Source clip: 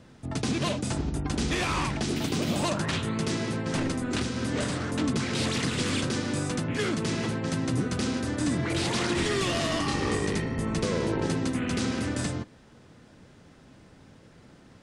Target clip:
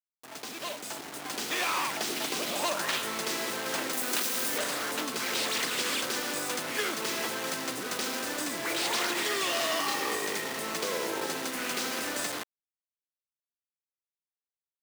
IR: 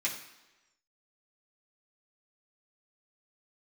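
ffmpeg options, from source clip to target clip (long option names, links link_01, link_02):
-filter_complex "[0:a]acrusher=bits=5:mix=0:aa=0.000001,dynaudnorm=framelen=540:gausssize=5:maxgain=11.5dB,asettb=1/sr,asplit=3[link_01][link_02][link_03];[link_01]atrim=end=3.934[link_04];[link_02]atrim=start=3.93:end=4.58,asetpts=PTS-STARTPTS,afade=type=in:duration=0.004:curve=qsin,afade=type=out:start_time=0.646:duration=0.004:curve=qsin,highshelf=frequency=8700:gain=12[link_05];[link_03]atrim=start=4.576[link_06];[link_04][link_05]acrossfade=duration=0.004:curve1=hsin:curve2=qsin[link_07];[link_07][link_06]acrossfade=duration=0.004:curve1=qsin:curve2=hsin,acompressor=threshold=-17dB:ratio=2.5,highpass=540,volume=-7dB"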